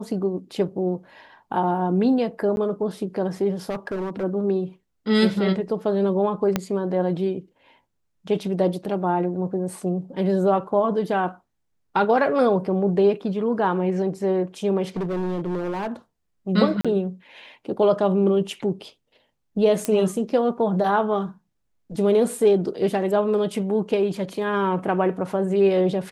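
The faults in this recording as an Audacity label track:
2.560000	2.570000	gap 11 ms
3.690000	4.240000	clipped -24 dBFS
6.560000	6.560000	pop -7 dBFS
14.960000	15.920000	clipped -23 dBFS
16.810000	16.850000	gap 36 ms
19.850000	19.850000	pop -9 dBFS

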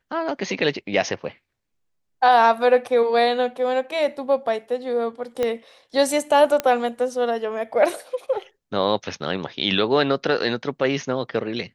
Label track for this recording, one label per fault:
5.430000	5.430000	pop -11 dBFS
6.600000	6.600000	pop -8 dBFS

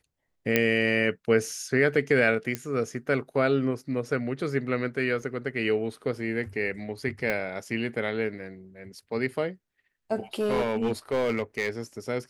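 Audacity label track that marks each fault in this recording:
0.560000	0.560000	pop -7 dBFS
2.550000	2.550000	pop -14 dBFS
5.220000	5.220000	gap 2.7 ms
7.300000	7.300000	pop -14 dBFS
10.400000	11.690000	clipped -21 dBFS

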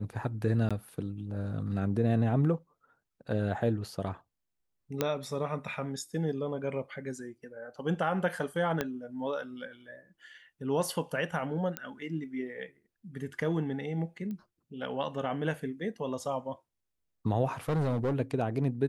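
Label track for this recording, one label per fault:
0.690000	0.710000	gap 16 ms
5.010000	5.010000	pop -13 dBFS
8.810000	8.810000	pop -15 dBFS
11.770000	11.770000	pop -16 dBFS
14.310000	14.310000	pop -29 dBFS
17.690000	18.140000	clipped -25.5 dBFS

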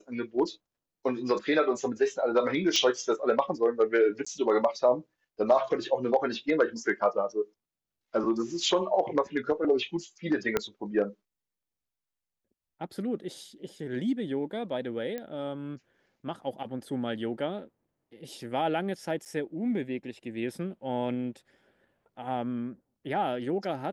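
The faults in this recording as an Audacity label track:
2.760000	2.760000	pop -13 dBFS
4.250000	4.260000	gap 15 ms
10.570000	10.570000	pop -11 dBFS
15.180000	15.180000	pop -22 dBFS
19.250000	19.260000	gap 8.9 ms

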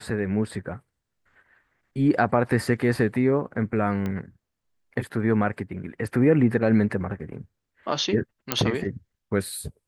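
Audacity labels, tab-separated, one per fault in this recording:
4.060000	4.060000	pop -18 dBFS
8.520000	8.520000	pop -3 dBFS

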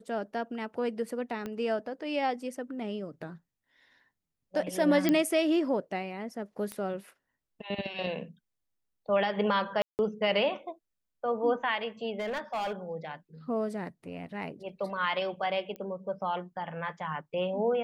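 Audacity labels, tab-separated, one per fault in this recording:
1.460000	1.460000	pop -23 dBFS
5.090000	5.090000	pop -12 dBFS
6.720000	6.720000	pop -22 dBFS
9.820000	9.990000	gap 0.169 s
12.190000	12.730000	clipped -28.5 dBFS
15.760000	15.760000	pop -28 dBFS

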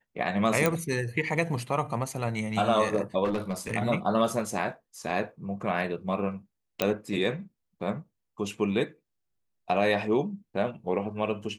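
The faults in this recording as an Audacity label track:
0.660000	0.660000	pop
3.240000	3.720000	clipped -24 dBFS
6.820000	6.820000	pop -9 dBFS

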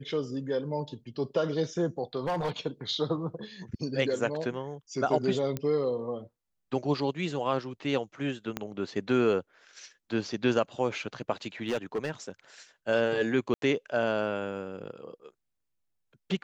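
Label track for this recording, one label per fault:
2.210000	2.510000	clipped -26 dBFS
5.570000	5.570000	pop -18 dBFS
8.570000	8.570000	pop -16 dBFS
11.670000	12.110000	clipped -25 dBFS
13.540000	13.620000	gap 82 ms

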